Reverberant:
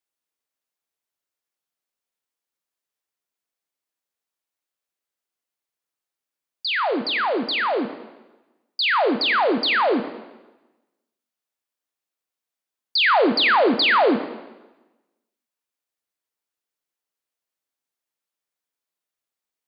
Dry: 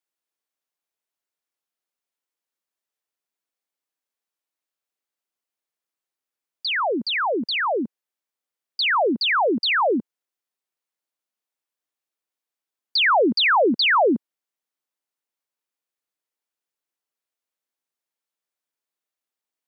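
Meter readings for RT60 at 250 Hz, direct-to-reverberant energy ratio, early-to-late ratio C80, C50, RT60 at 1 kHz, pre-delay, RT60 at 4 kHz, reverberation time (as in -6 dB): 1.1 s, 8.5 dB, 12.5 dB, 11.0 dB, 1.1 s, 6 ms, 1.0 s, 1.1 s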